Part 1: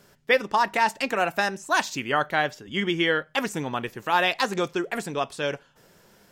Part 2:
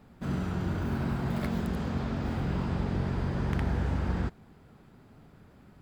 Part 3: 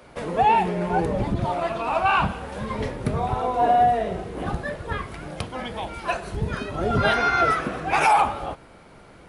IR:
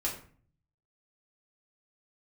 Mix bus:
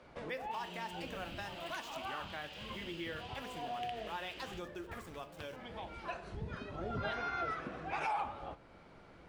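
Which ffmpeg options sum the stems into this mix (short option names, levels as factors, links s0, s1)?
-filter_complex "[0:a]aeval=exprs='val(0)*gte(abs(val(0)),0.0168)':c=same,volume=0.126,asplit=3[s0][s1][s2];[s1]volume=0.335[s3];[1:a]highpass=f=2900:t=q:w=6.1,adelay=300,volume=0.631[s4];[2:a]lowpass=5500,volume=0.299,asplit=2[s5][s6];[s6]volume=0.119[s7];[s2]apad=whole_len=409554[s8];[s5][s8]sidechaincompress=threshold=0.00224:ratio=8:attack=16:release=278[s9];[3:a]atrim=start_sample=2205[s10];[s3][s7]amix=inputs=2:normalize=0[s11];[s11][s10]afir=irnorm=-1:irlink=0[s12];[s0][s4][s9][s12]amix=inputs=4:normalize=0,acompressor=threshold=0.00355:ratio=1.5"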